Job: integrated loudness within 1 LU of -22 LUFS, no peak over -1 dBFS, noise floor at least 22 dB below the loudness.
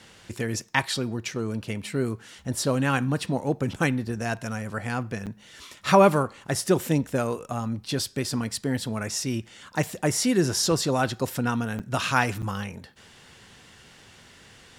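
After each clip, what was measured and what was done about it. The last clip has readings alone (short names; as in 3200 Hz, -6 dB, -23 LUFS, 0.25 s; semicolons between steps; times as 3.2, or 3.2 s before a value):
dropouts 3; longest dropout 7.9 ms; loudness -26.5 LUFS; peak -4.5 dBFS; loudness target -22.0 LUFS
-> interpolate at 5.26/11.79/12.42, 7.9 ms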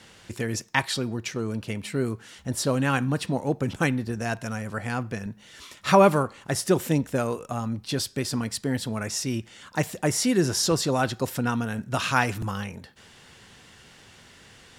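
dropouts 0; loudness -26.5 LUFS; peak -4.5 dBFS; loudness target -22.0 LUFS
-> gain +4.5 dB; limiter -1 dBFS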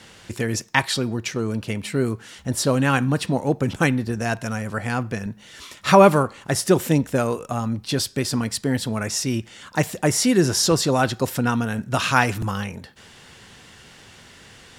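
loudness -22.0 LUFS; peak -1.0 dBFS; noise floor -48 dBFS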